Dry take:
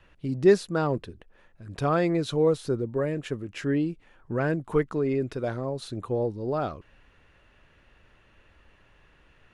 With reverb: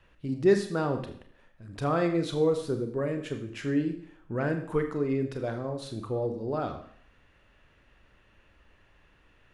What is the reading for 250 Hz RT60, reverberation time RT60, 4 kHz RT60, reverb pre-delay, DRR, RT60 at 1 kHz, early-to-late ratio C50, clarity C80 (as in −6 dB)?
0.65 s, 0.65 s, 0.60 s, 29 ms, 6.0 dB, 0.60 s, 10.0 dB, 12.5 dB